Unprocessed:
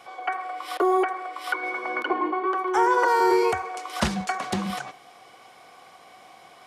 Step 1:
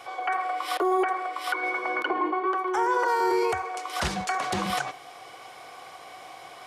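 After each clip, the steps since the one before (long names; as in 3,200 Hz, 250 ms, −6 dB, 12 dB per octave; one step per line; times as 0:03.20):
parametric band 210 Hz −11 dB 0.43 octaves
speech leveller 2 s
brickwall limiter −16.5 dBFS, peak gain reduction 8 dB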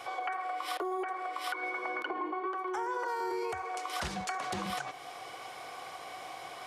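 downward compressor 4 to 1, threshold −34 dBFS, peak gain reduction 11.5 dB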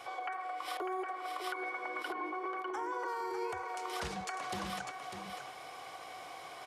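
single-tap delay 599 ms −6.5 dB
level −4 dB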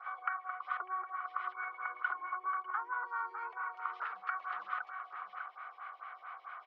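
four-pole ladder band-pass 1,400 Hz, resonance 75%
high-frequency loss of the air 260 metres
phaser with staggered stages 4.5 Hz
level +13.5 dB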